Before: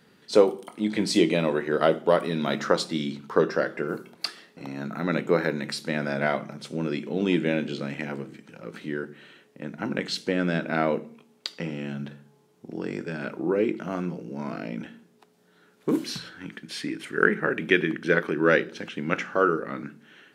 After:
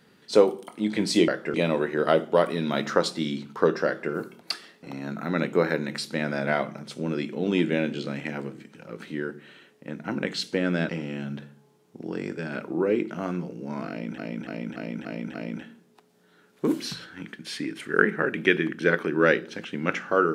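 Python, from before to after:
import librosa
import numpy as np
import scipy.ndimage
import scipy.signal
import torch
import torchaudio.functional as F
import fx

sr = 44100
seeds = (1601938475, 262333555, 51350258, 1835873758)

y = fx.edit(x, sr, fx.duplicate(start_s=3.6, length_s=0.26, to_s=1.28),
    fx.cut(start_s=10.63, length_s=0.95),
    fx.repeat(start_s=14.58, length_s=0.29, count=6), tone=tone)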